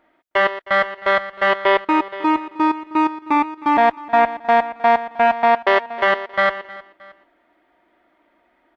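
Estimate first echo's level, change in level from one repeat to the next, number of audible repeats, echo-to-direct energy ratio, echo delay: -19.5 dB, -7.0 dB, 2, -18.5 dB, 0.312 s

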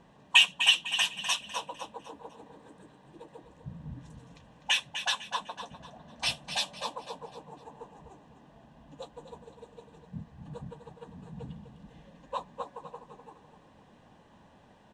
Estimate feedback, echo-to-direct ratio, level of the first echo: 37%, -9.5 dB, -10.0 dB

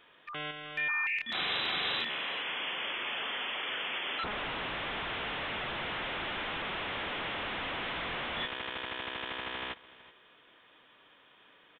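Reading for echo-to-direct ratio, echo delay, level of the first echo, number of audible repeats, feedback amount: -19.0 dB, 0.375 s, -19.0 dB, 1, no steady repeat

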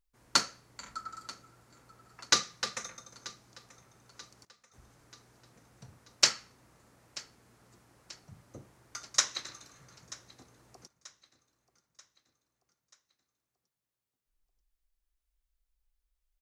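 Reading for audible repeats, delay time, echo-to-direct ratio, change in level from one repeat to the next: 3, 0.935 s, -18.5 dB, -6.0 dB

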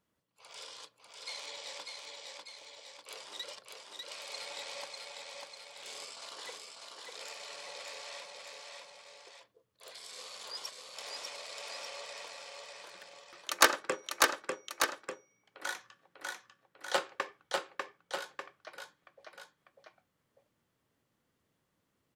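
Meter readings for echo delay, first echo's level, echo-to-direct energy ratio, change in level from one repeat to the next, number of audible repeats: 0.596 s, -3.0 dB, -1.5 dB, -4.5 dB, 2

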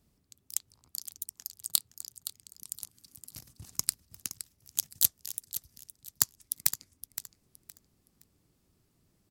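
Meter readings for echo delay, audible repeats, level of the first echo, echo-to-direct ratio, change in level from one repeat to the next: 0.517 s, 2, -12.0 dB, -11.5 dB, -12.0 dB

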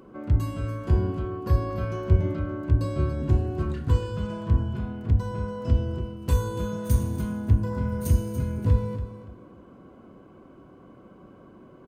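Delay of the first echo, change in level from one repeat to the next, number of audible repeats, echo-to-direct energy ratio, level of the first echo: 0.286 s, -13.0 dB, 2, -12.0 dB, -12.0 dB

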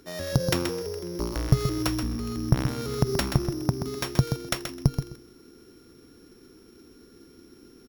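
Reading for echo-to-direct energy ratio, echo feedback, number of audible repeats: -7.5 dB, 15%, 2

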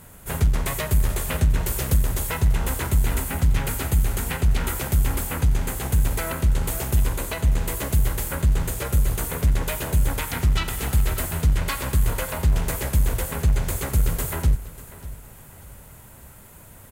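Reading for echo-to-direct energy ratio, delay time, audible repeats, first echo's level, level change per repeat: -16.5 dB, 0.593 s, 2, -17.0 dB, -9.0 dB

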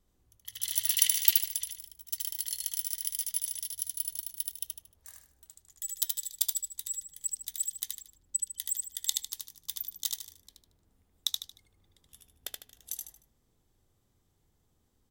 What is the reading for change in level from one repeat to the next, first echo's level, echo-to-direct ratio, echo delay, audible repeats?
-9.5 dB, -3.0 dB, -2.5 dB, 76 ms, 4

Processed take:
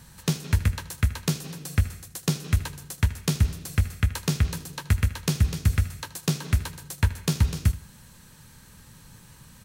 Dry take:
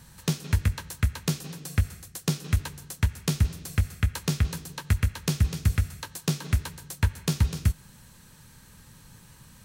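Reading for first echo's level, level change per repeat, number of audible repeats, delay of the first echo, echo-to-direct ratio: -17.5 dB, -11.5 dB, 2, 77 ms, -17.0 dB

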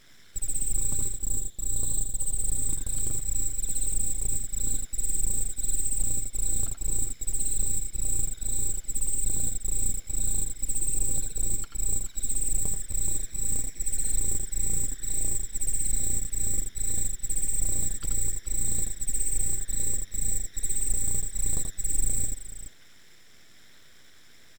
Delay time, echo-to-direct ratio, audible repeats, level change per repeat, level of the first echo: 82 ms, -3.5 dB, 2, no steady repeat, -5.5 dB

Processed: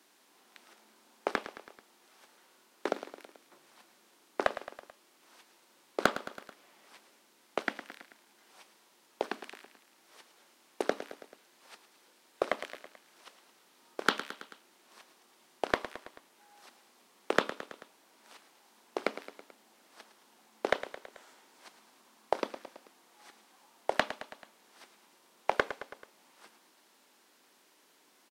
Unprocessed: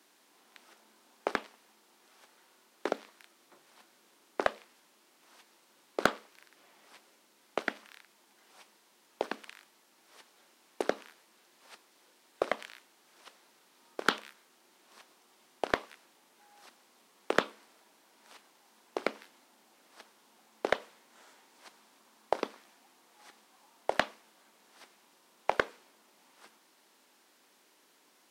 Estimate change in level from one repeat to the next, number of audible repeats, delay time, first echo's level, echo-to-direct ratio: -4.5 dB, 4, 0.109 s, -13.0 dB, -11.0 dB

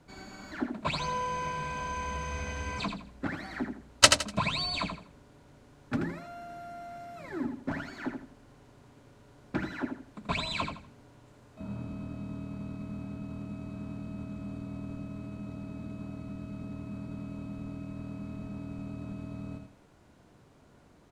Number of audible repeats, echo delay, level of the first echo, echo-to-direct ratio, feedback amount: 3, 82 ms, -6.5 dB, -6.0 dB, 28%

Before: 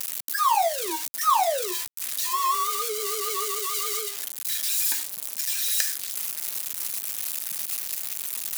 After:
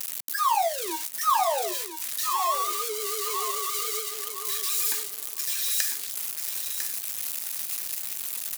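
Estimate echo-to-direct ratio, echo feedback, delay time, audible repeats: -8.0 dB, 18%, 1 s, 2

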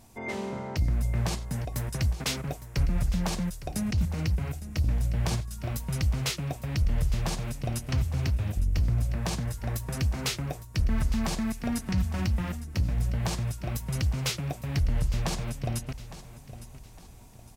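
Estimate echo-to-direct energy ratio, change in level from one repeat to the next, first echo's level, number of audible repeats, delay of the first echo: -14.5 dB, -8.5 dB, -15.0 dB, 3, 0.859 s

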